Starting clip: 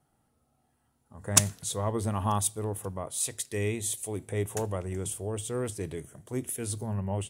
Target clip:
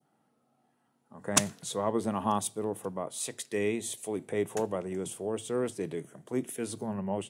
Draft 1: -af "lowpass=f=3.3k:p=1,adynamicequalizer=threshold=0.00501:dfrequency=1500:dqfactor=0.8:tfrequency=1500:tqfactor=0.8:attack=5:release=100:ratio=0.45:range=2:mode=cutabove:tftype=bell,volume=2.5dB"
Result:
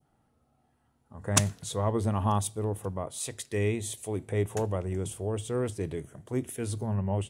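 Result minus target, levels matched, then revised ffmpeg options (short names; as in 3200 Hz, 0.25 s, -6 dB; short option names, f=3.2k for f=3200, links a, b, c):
125 Hz band +10.0 dB
-af "lowpass=f=3.3k:p=1,adynamicequalizer=threshold=0.00501:dfrequency=1500:dqfactor=0.8:tfrequency=1500:tqfactor=0.8:attack=5:release=100:ratio=0.45:range=2:mode=cutabove:tftype=bell,highpass=f=160:w=0.5412,highpass=f=160:w=1.3066,volume=2.5dB"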